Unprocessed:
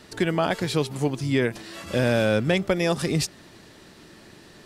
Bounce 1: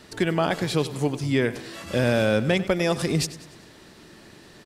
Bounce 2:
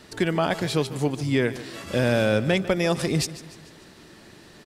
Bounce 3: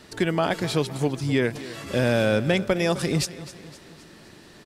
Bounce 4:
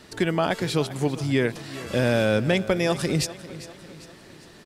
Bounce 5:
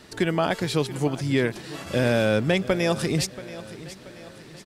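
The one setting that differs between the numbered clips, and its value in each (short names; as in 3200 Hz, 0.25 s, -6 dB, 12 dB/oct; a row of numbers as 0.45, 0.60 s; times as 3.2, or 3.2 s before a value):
feedback echo, time: 97, 147, 258, 398, 681 ms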